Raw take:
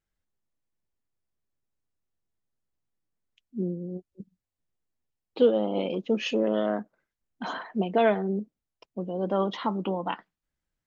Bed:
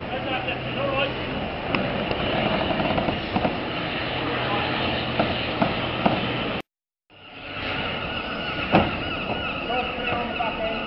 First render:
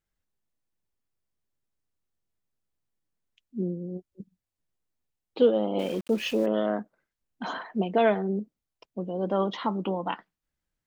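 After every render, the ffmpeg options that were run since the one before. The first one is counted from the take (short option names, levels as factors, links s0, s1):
-filter_complex "[0:a]asettb=1/sr,asplit=3[s0][s1][s2];[s0]atrim=end=5.794[s3];[s1]atrim=start=5.79:end=6.46,asetpts=PTS-STARTPTS,afade=t=in:d=0.004:c=qsin,afade=t=out:st=0.666:d=0.004:c=qsin,aeval=exprs='val(0)*gte(abs(val(0)),0.01)':c=same[s4];[s2]atrim=start=6.456[s5];[s3][s4]acrossfade=d=0.004:c1=hsin:c2=qsin[s6];[s6][s5]acrossfade=d=0.004:c1=qsin:c2=hsin"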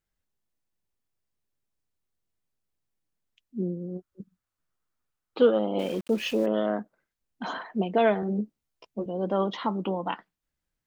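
-filter_complex "[0:a]asettb=1/sr,asplit=3[s0][s1][s2];[s0]atrim=end=3.774[s3];[s1]atrim=start=3.77:end=5.59,asetpts=PTS-STARTPTS,afade=t=in:d=0.004:c=qsin,afade=t=out:st=1.816:d=0.004:c=qsin,equalizer=f=1300:t=o:w=0.69:g=11.5[s4];[s2]atrim=start=5.586[s5];[s3][s4]acrossfade=d=0.004:c1=hsin:c2=qsin[s6];[s6][s5]acrossfade=d=0.004:c1=qsin:c2=hsin,asettb=1/sr,asplit=3[s7][s8][s9];[s7]atrim=end=8.214[s10];[s8]atrim=start=8.21:end=9.06,asetpts=PTS-STARTPTS,afade=t=in:d=0.004:c=qsin,afade=t=out:st=0.846:d=0.004:c=qsin,asplit=2[s11][s12];[s12]adelay=14,volume=0.794[s13];[s11][s13]amix=inputs=2:normalize=0,atrim=end_sample=37485[s14];[s9]atrim=start=9.056[s15];[s10][s14]acrossfade=d=0.004:c1=hsin:c2=qsin[s16];[s16][s15]acrossfade=d=0.004:c1=qsin:c2=hsin"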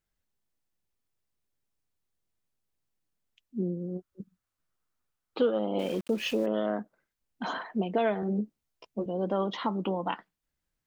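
-af "acompressor=threshold=0.0501:ratio=2"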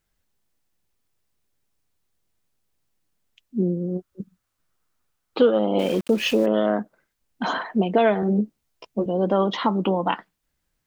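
-af "volume=2.66"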